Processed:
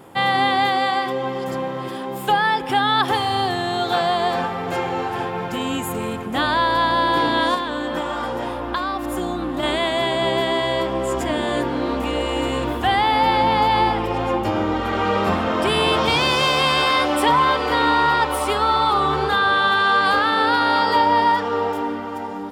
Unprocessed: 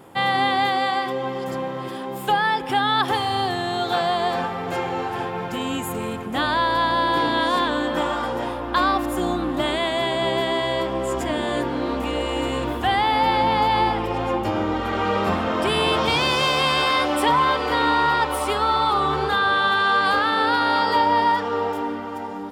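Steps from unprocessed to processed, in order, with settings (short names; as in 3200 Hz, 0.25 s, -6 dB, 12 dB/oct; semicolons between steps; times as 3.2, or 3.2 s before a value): 7.54–9.63 compressor, threshold -23 dBFS, peak gain reduction 8 dB; gain +2 dB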